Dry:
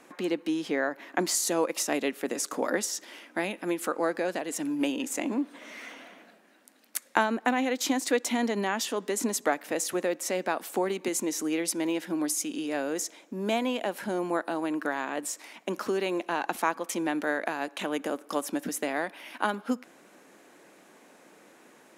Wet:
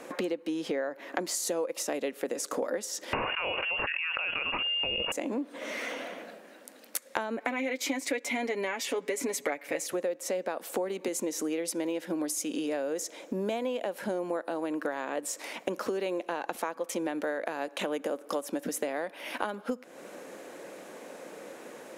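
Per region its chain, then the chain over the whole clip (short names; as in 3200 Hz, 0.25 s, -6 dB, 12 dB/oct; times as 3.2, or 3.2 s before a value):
3.13–5.12 inverted band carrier 3100 Hz + bell 940 Hz +5.5 dB 0.29 oct + fast leveller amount 100%
7.37–9.87 bell 2200 Hz +14 dB 0.35 oct + comb 7.1 ms
whole clip: bell 520 Hz +9.5 dB 0.53 oct; compressor 6:1, threshold -37 dBFS; gain +7 dB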